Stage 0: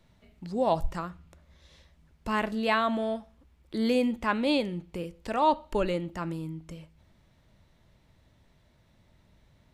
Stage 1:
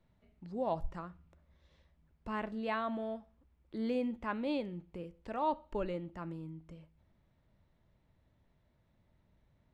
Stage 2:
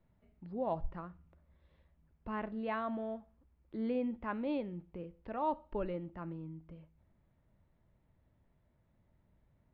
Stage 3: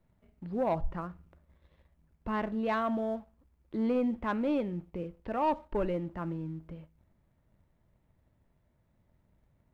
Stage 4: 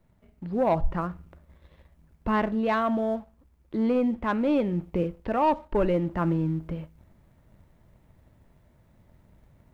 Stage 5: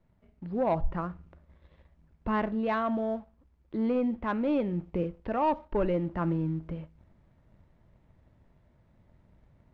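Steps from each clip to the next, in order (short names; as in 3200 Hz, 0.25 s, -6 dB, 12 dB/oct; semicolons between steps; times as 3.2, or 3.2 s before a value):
LPF 1800 Hz 6 dB/oct; gain -8.5 dB
air absorption 330 m
sample leveller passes 1; gain +3.5 dB
vocal rider within 4 dB 0.5 s; gain +7.5 dB
air absorption 100 m; gain -3.5 dB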